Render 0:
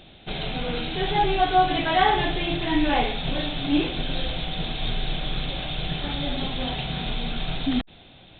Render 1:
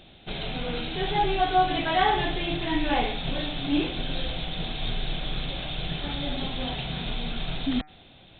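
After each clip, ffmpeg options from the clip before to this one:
ffmpeg -i in.wav -af "bandreject=frequency=151.7:width_type=h:width=4,bandreject=frequency=303.4:width_type=h:width=4,bandreject=frequency=455.1:width_type=h:width=4,bandreject=frequency=606.8:width_type=h:width=4,bandreject=frequency=758.5:width_type=h:width=4,bandreject=frequency=910.2:width_type=h:width=4,bandreject=frequency=1061.9:width_type=h:width=4,bandreject=frequency=1213.6:width_type=h:width=4,bandreject=frequency=1365.3:width_type=h:width=4,bandreject=frequency=1517:width_type=h:width=4,bandreject=frequency=1668.7:width_type=h:width=4,bandreject=frequency=1820.4:width_type=h:width=4,bandreject=frequency=1972.1:width_type=h:width=4,bandreject=frequency=2123.8:width_type=h:width=4,bandreject=frequency=2275.5:width_type=h:width=4,bandreject=frequency=2427.2:width_type=h:width=4,volume=-2.5dB" out.wav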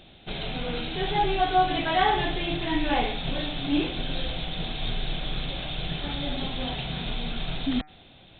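ffmpeg -i in.wav -af anull out.wav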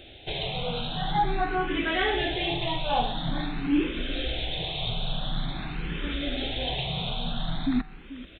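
ffmpeg -i in.wav -filter_complex "[0:a]asplit=2[link_01][link_02];[link_02]acompressor=threshold=-34dB:ratio=6,volume=0dB[link_03];[link_01][link_03]amix=inputs=2:normalize=0,aecho=1:1:438:0.158,asplit=2[link_04][link_05];[link_05]afreqshift=0.47[link_06];[link_04][link_06]amix=inputs=2:normalize=1" out.wav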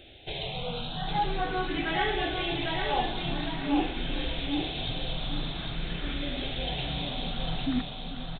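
ffmpeg -i in.wav -af "aecho=1:1:802|1604|2406|3208:0.596|0.191|0.061|0.0195,volume=-3.5dB" out.wav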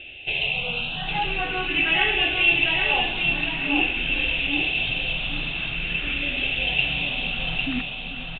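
ffmpeg -i in.wav -af "lowpass=frequency=2700:width_type=q:width=15" out.wav

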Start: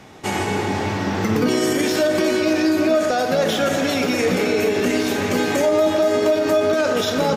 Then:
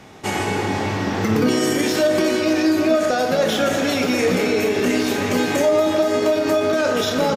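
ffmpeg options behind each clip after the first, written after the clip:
ffmpeg -i in.wav -filter_complex "[0:a]asplit=2[link_01][link_02];[link_02]adelay=28,volume=-10.5dB[link_03];[link_01][link_03]amix=inputs=2:normalize=0" out.wav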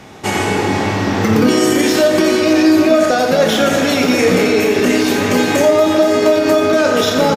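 ffmpeg -i in.wav -af "aecho=1:1:86:0.316,volume=5.5dB" out.wav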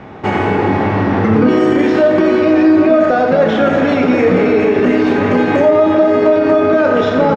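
ffmpeg -i in.wav -filter_complex "[0:a]lowpass=1800,asplit=2[link_01][link_02];[link_02]alimiter=limit=-12dB:level=0:latency=1:release=127,volume=2.5dB[link_03];[link_01][link_03]amix=inputs=2:normalize=0,volume=-2.5dB" out.wav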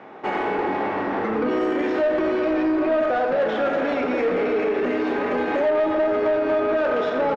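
ffmpeg -i in.wav -af "highpass=360,highshelf=frequency=4300:gain=-10.5,asoftclip=type=tanh:threshold=-10dB,volume=-5.5dB" out.wav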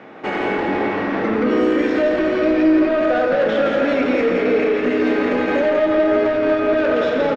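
ffmpeg -i in.wav -filter_complex "[0:a]equalizer=frequency=890:width_type=o:width=0.94:gain=-7.5,bandreject=frequency=390:width=12,asplit=2[link_01][link_02];[link_02]aecho=0:1:169:0.562[link_03];[link_01][link_03]amix=inputs=2:normalize=0,volume=5.5dB" out.wav

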